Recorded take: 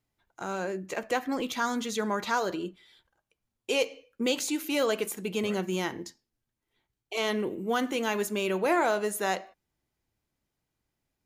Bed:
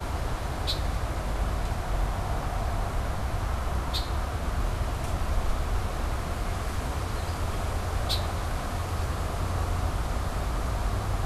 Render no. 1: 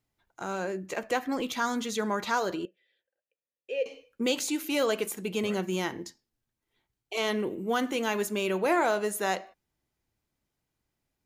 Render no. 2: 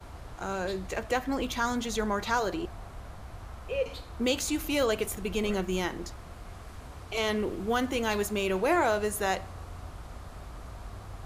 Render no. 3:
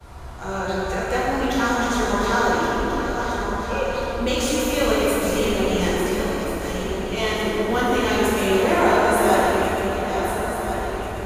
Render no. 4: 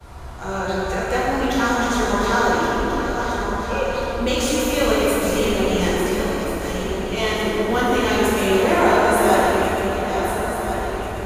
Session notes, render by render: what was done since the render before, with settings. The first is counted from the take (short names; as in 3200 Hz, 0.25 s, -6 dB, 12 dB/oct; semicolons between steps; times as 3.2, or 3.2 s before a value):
2.65–3.86 vowel filter e
add bed -14 dB
regenerating reverse delay 0.694 s, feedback 65%, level -7 dB; plate-style reverb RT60 4.1 s, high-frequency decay 0.45×, DRR -8 dB
gain +1.5 dB